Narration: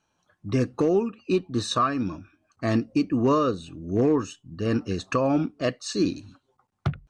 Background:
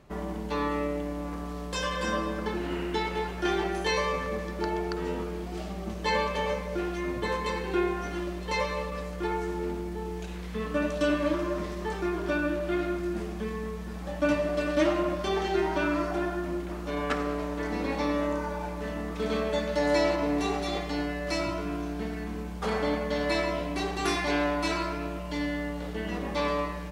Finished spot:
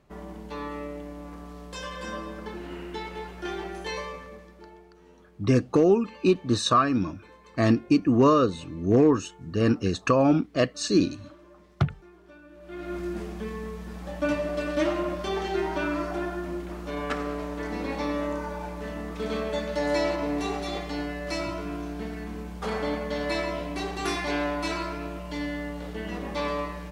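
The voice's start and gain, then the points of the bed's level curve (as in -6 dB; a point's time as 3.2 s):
4.95 s, +2.5 dB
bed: 3.96 s -6 dB
4.93 s -22.5 dB
12.48 s -22.5 dB
12.97 s -1 dB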